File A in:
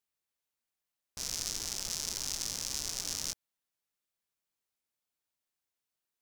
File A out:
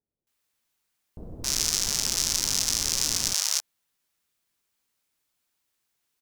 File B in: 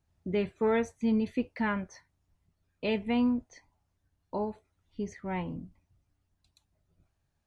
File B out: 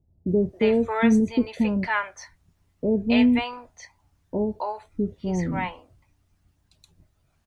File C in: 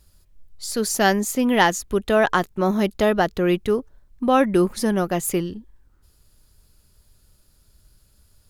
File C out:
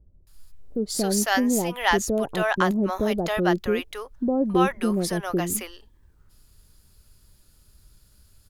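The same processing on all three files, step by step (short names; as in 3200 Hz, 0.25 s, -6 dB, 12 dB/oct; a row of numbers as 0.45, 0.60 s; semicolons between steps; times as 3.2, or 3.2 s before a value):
in parallel at -2 dB: compressor, threshold -27 dBFS; on the sum: bands offset in time lows, highs 0.27 s, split 600 Hz; match loudness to -24 LUFS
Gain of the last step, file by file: +6.0, +5.0, -4.0 dB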